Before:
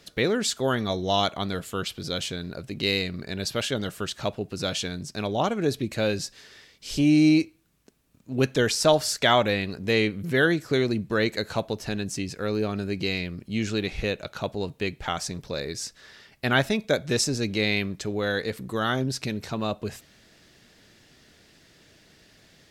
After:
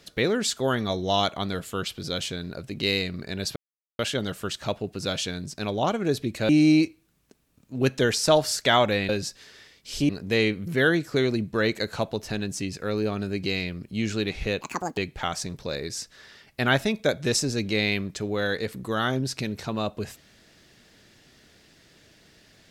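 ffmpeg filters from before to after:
-filter_complex "[0:a]asplit=7[s0][s1][s2][s3][s4][s5][s6];[s0]atrim=end=3.56,asetpts=PTS-STARTPTS,afade=t=out:st=3.556:d=0.004:c=hsin,apad=pad_dur=0.43[s7];[s1]atrim=start=3.56:end=6.062,asetpts=PTS-STARTPTS,afade=t=in:d=0.004:c=hsin[s8];[s2]atrim=start=7.058:end=9.662[s9];[s3]atrim=start=6.058:end=7.062[s10];[s4]atrim=start=9.658:end=14.184[s11];[s5]atrim=start=14.18:end=14.82,asetpts=PTS-STARTPTS,asetrate=77616,aresample=44100,atrim=end_sample=16036,asetpts=PTS-STARTPTS[s12];[s6]atrim=start=14.816[s13];[s7][s8]concat=n=2:v=0:a=1[s14];[s14][s9]acrossfade=d=0.004:c1=hsin:c2=hsin[s15];[s15][s10]acrossfade=d=0.004:c1=hsin:c2=hsin[s16];[s16][s11]acrossfade=d=0.004:c1=hsin:c2=hsin[s17];[s17][s12]acrossfade=d=0.004:c1=hsin:c2=hsin[s18];[s18][s13]acrossfade=d=0.004:c1=hsin:c2=hsin"

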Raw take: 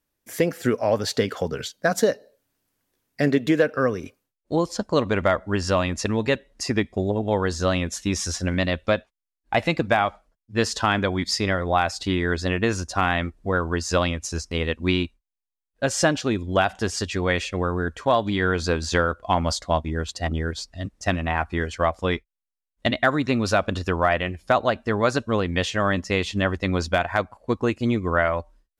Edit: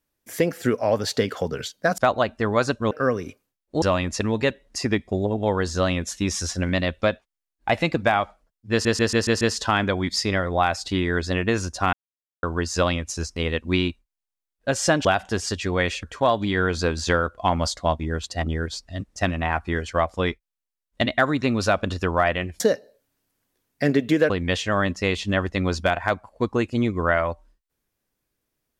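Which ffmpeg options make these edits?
-filter_complex "[0:a]asplit=15[s0][s1][s2][s3][s4][s5][s6][s7][s8][s9][s10][s11][s12][s13][s14];[s0]atrim=end=1.982[s15];[s1]atrim=start=24.448:end=25.382[s16];[s2]atrim=start=3.678:end=4.592[s17];[s3]atrim=start=5.668:end=10.702[s18];[s4]atrim=start=10.558:end=10.702[s19];[s5]atrim=start=10.558:end=10.702[s20];[s6]atrim=start=10.558:end=10.702[s21];[s7]atrim=start=10.558:end=10.702[s22];[s8]atrim=start=10.558:end=13.08,asetpts=PTS-STARTPTS,afade=t=out:st=2.518:d=0.004:c=hsin[s23];[s9]atrim=start=13.08:end=13.58,asetpts=PTS-STARTPTS,volume=0[s24];[s10]atrim=start=13.58:end=16.202,asetpts=PTS-STARTPTS,afade=t=in:d=0.004:c=hsin[s25];[s11]atrim=start=16.548:end=17.532[s26];[s12]atrim=start=17.878:end=24.452[s27];[s13]atrim=start=1.978:end=3.682[s28];[s14]atrim=start=25.378[s29];[s15][s16]acrossfade=d=0.004:c1=hsin:c2=hsin[s30];[s30][s17]acrossfade=d=0.004:c1=hsin:c2=hsin[s31];[s31][s18]acrossfade=d=0.004:c1=hsin:c2=hsin[s32];[s32][s19]acrossfade=d=0.004:c1=hsin:c2=hsin[s33];[s33][s20]acrossfade=d=0.004:c1=hsin:c2=hsin[s34];[s34][s21]acrossfade=d=0.004:c1=hsin:c2=hsin[s35];[s35][s22]acrossfade=d=0.004:c1=hsin:c2=hsin[s36];[s23][s24][s25]concat=n=3:v=0:a=1[s37];[s36][s37]acrossfade=d=0.004:c1=hsin:c2=hsin[s38];[s38][s26]acrossfade=d=0.004:c1=hsin:c2=hsin[s39];[s39][s27]acrossfade=d=0.004:c1=hsin:c2=hsin[s40];[s40][s28]acrossfade=d=0.004:c1=hsin:c2=hsin[s41];[s41][s29]acrossfade=d=0.004:c1=hsin:c2=hsin"

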